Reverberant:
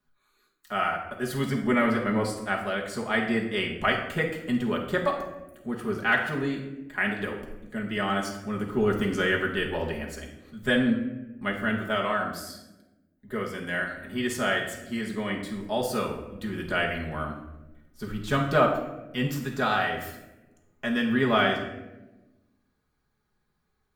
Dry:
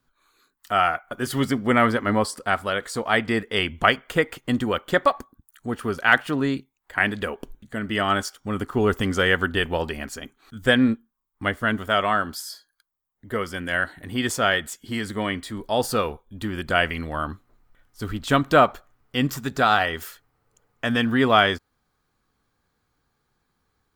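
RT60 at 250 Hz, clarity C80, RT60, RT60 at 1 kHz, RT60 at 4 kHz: 1.6 s, 9.5 dB, 1.1 s, 0.85 s, 0.60 s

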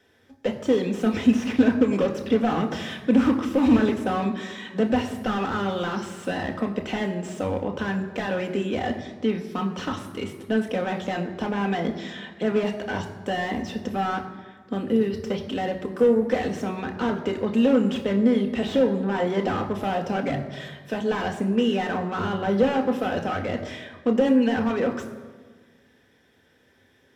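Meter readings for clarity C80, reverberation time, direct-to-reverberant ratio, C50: 11.0 dB, 1.4 s, 3.0 dB, 10.0 dB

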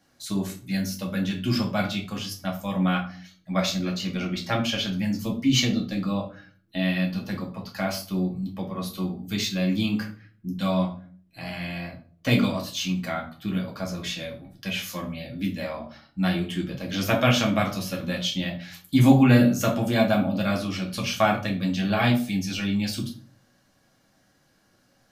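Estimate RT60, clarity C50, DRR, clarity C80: 0.45 s, 9.5 dB, -1.0 dB, 14.5 dB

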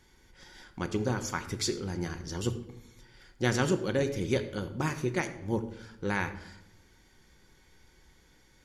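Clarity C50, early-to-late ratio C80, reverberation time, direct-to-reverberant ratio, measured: 12.0 dB, 14.0 dB, 0.85 s, 7.5 dB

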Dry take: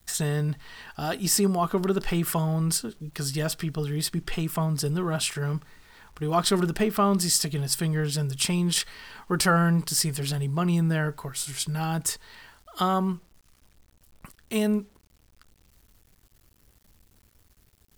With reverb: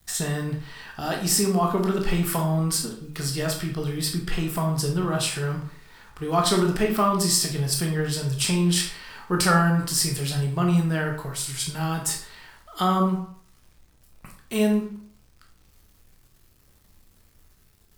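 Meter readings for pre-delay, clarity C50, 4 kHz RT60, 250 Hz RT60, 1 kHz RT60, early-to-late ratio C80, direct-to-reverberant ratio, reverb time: 15 ms, 6.5 dB, 0.45 s, 0.50 s, 0.60 s, 11.0 dB, 1.0 dB, 0.55 s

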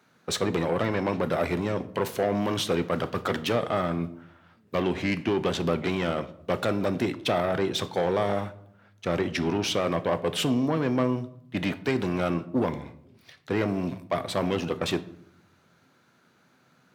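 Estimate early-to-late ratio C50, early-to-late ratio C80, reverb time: 17.0 dB, 20.0 dB, 0.70 s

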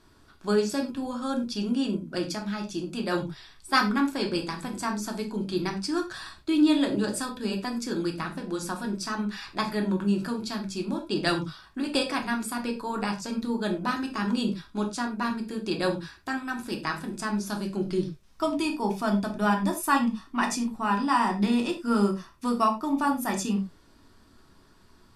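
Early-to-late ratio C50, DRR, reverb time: 10.5 dB, 1.5 dB, not exponential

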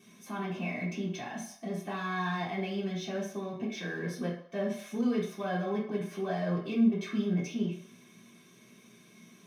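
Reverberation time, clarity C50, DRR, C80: 0.65 s, 4.5 dB, -8.5 dB, 9.0 dB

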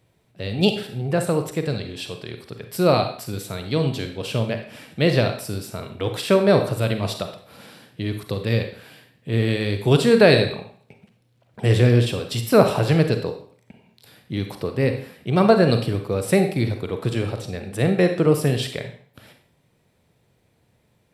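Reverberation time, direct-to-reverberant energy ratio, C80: 0.50 s, 6.0 dB, 11.5 dB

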